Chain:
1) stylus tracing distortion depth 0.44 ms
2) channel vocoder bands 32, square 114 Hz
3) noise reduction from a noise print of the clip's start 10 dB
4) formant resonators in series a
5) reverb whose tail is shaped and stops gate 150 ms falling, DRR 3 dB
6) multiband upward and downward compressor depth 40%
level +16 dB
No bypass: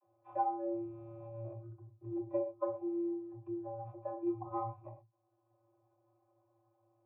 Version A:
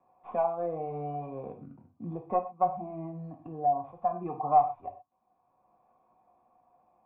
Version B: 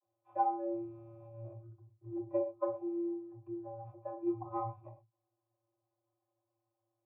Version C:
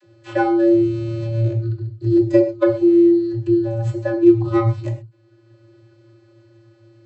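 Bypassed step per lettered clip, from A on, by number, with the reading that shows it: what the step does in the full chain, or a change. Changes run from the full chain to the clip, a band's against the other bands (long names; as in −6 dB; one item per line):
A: 2, 250 Hz band −8.0 dB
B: 6, change in crest factor +2.0 dB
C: 4, 1 kHz band −14.5 dB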